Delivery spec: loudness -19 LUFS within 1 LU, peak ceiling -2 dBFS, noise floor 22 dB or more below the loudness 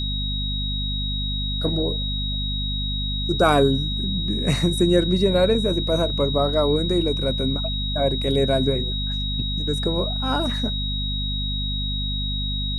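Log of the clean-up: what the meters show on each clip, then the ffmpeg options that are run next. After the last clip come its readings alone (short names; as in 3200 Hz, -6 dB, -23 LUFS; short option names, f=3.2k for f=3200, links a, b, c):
hum 50 Hz; harmonics up to 250 Hz; hum level -24 dBFS; steady tone 3800 Hz; tone level -27 dBFS; loudness -22.5 LUFS; peak -4.5 dBFS; loudness target -19.0 LUFS
-> -af "bandreject=f=50:t=h:w=6,bandreject=f=100:t=h:w=6,bandreject=f=150:t=h:w=6,bandreject=f=200:t=h:w=6,bandreject=f=250:t=h:w=6"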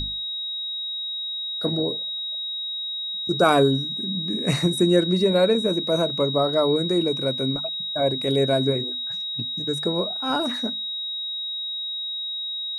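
hum none; steady tone 3800 Hz; tone level -27 dBFS
-> -af "bandreject=f=3.8k:w=30"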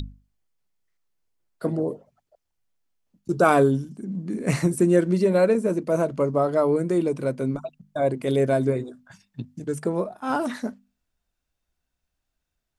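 steady tone none; loudness -23.5 LUFS; peak -5.0 dBFS; loudness target -19.0 LUFS
-> -af "volume=4.5dB,alimiter=limit=-2dB:level=0:latency=1"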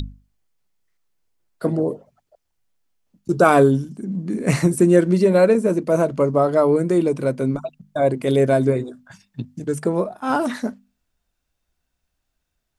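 loudness -19.0 LUFS; peak -2.0 dBFS; noise floor -77 dBFS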